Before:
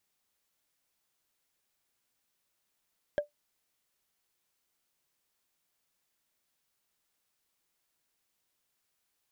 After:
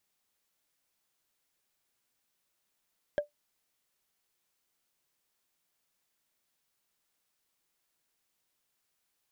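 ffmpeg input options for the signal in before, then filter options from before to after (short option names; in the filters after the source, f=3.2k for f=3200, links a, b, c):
-f lavfi -i "aevalsrc='0.0891*pow(10,-3*t/0.13)*sin(2*PI*588*t)+0.0282*pow(10,-3*t/0.038)*sin(2*PI*1621.1*t)+0.00891*pow(10,-3*t/0.017)*sin(2*PI*3177.6*t)+0.00282*pow(10,-3*t/0.009)*sin(2*PI*5252.6*t)+0.000891*pow(10,-3*t/0.006)*sin(2*PI*7843.9*t)':d=0.45:s=44100"
-af "equalizer=f=68:w=2.5:g=-4"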